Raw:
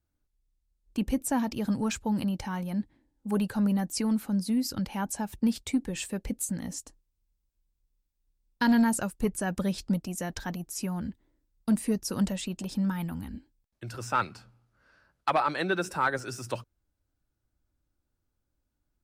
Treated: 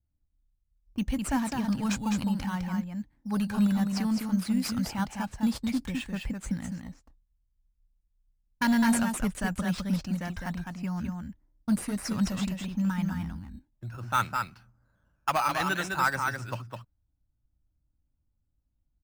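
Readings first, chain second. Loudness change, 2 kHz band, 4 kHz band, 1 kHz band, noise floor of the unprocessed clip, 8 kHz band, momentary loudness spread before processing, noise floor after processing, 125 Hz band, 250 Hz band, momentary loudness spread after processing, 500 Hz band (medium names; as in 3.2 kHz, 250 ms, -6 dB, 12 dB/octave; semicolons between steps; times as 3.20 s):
+0.5 dB, +2.5 dB, +1.0 dB, +1.0 dB, -80 dBFS, -2.5 dB, 11 LU, -76 dBFS, +2.0 dB, +0.5 dB, 13 LU, -5.5 dB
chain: level-controlled noise filter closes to 580 Hz, open at -24 dBFS; peaking EQ 420 Hz -14 dB 1.3 oct; delay 207 ms -4.5 dB; in parallel at -5.5 dB: decimation with a swept rate 9×, swing 60% 0.6 Hz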